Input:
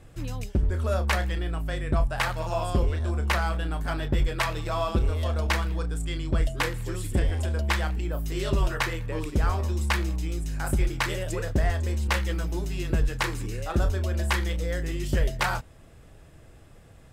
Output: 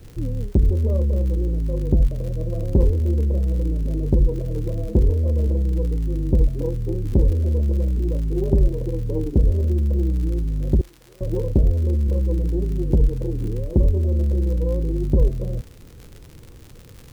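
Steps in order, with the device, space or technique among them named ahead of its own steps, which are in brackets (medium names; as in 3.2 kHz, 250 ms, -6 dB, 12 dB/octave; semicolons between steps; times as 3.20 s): steep low-pass 540 Hz 72 dB/octave; 10.81–11.21 s: pre-emphasis filter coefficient 0.97; record under a worn stylus (tracing distortion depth 0.14 ms; crackle 77 per s -39 dBFS; pink noise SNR 38 dB); trim +7.5 dB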